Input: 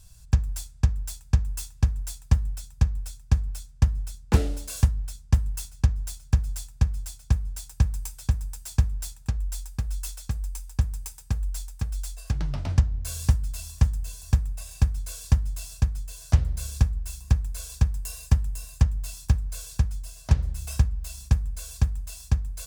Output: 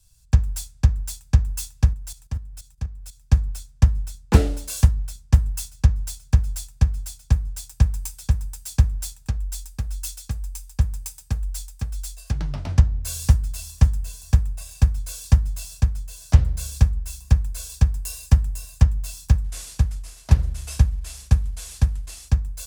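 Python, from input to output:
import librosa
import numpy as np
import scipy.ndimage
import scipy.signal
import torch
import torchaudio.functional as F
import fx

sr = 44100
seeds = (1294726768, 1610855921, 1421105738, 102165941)

y = fx.level_steps(x, sr, step_db=12, at=(1.93, 3.21))
y = fx.cvsd(y, sr, bps=64000, at=(19.44, 22.29))
y = fx.band_widen(y, sr, depth_pct=40)
y = y * 10.0 ** (3.5 / 20.0)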